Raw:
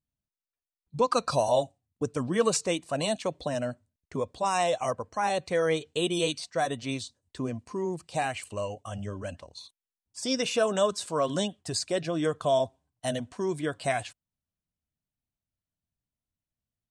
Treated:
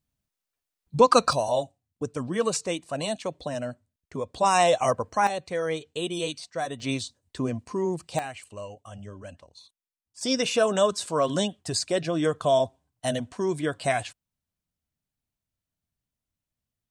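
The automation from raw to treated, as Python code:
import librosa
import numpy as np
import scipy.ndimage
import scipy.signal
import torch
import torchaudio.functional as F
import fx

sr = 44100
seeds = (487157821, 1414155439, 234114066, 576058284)

y = fx.gain(x, sr, db=fx.steps((0.0, 7.5), (1.33, -1.0), (4.34, 6.0), (5.27, -2.5), (6.8, 4.0), (8.19, -5.5), (10.21, 3.0)))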